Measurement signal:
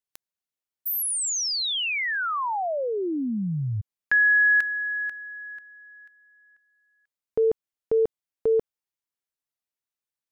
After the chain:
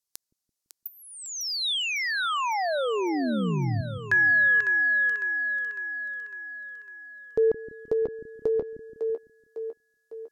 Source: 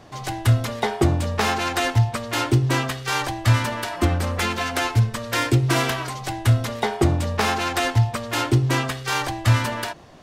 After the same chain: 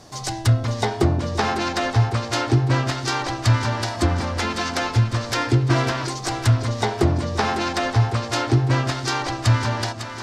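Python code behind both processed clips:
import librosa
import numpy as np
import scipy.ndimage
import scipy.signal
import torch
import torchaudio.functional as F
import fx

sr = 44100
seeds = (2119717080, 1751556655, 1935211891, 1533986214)

y = fx.high_shelf_res(x, sr, hz=3800.0, db=8.0, q=1.5)
y = fx.env_lowpass_down(y, sr, base_hz=2500.0, full_db=-16.5)
y = fx.echo_split(y, sr, split_hz=330.0, low_ms=168, high_ms=553, feedback_pct=52, wet_db=-8)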